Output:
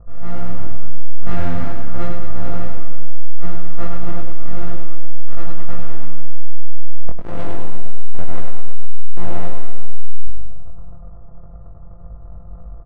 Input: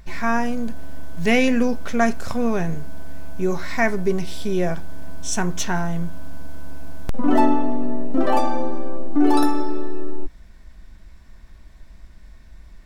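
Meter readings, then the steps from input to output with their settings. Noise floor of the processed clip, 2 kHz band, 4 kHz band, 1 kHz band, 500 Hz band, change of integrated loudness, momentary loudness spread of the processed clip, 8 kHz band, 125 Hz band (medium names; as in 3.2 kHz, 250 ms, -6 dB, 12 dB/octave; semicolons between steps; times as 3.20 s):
-34 dBFS, -13.0 dB, -13.5 dB, -10.5 dB, -10.0 dB, -10.5 dB, 14 LU, under -20 dB, +6.5 dB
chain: sorted samples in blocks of 256 samples; Chebyshev low-pass 1.3 kHz, order 4; peaking EQ 70 Hz +11 dB 1.3 oct; comb 1.6 ms, depth 59%; level rider gain up to 4 dB; hum notches 60/120/180 Hz; hard clipper -17 dBFS, distortion -8 dB; feedback comb 330 Hz, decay 0.48 s, harmonics all, mix 70%; chorus 1.9 Hz, delay 19 ms, depth 3.3 ms; reverse bouncing-ball echo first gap 100 ms, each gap 1.1×, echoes 5; trim +7.5 dB; Vorbis 96 kbps 32 kHz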